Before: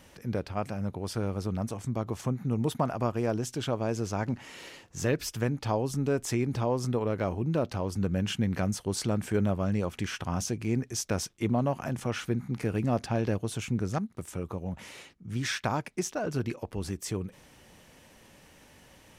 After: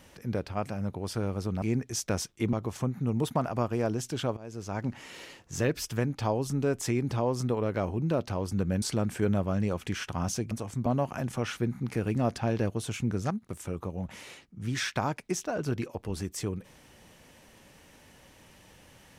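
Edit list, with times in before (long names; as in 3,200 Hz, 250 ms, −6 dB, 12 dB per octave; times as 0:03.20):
0:01.62–0:01.97: swap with 0:10.63–0:11.54
0:03.81–0:04.37: fade in, from −21 dB
0:08.26–0:08.94: remove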